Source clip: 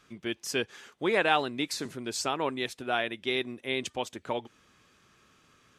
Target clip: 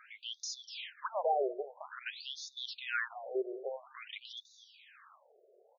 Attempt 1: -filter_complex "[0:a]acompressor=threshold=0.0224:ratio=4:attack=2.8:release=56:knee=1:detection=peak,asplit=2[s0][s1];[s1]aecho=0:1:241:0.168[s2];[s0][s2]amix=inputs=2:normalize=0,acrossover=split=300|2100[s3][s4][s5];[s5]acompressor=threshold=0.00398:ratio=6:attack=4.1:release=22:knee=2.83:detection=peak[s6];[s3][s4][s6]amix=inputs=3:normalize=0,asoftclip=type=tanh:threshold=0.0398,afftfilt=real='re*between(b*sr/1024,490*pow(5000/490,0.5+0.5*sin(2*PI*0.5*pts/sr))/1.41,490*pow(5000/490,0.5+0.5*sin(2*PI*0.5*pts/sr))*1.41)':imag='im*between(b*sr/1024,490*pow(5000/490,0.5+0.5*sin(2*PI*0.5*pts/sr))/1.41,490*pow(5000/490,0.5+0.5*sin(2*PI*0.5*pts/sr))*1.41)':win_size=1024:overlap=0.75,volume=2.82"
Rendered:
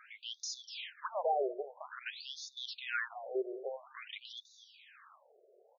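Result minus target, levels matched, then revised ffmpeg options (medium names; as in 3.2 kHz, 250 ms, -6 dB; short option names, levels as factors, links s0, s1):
saturation: distortion +19 dB
-filter_complex "[0:a]acompressor=threshold=0.0224:ratio=4:attack=2.8:release=56:knee=1:detection=peak,asplit=2[s0][s1];[s1]aecho=0:1:241:0.168[s2];[s0][s2]amix=inputs=2:normalize=0,acrossover=split=300|2100[s3][s4][s5];[s5]acompressor=threshold=0.00398:ratio=6:attack=4.1:release=22:knee=2.83:detection=peak[s6];[s3][s4][s6]amix=inputs=3:normalize=0,asoftclip=type=tanh:threshold=0.141,afftfilt=real='re*between(b*sr/1024,490*pow(5000/490,0.5+0.5*sin(2*PI*0.5*pts/sr))/1.41,490*pow(5000/490,0.5+0.5*sin(2*PI*0.5*pts/sr))*1.41)':imag='im*between(b*sr/1024,490*pow(5000/490,0.5+0.5*sin(2*PI*0.5*pts/sr))/1.41,490*pow(5000/490,0.5+0.5*sin(2*PI*0.5*pts/sr))*1.41)':win_size=1024:overlap=0.75,volume=2.82"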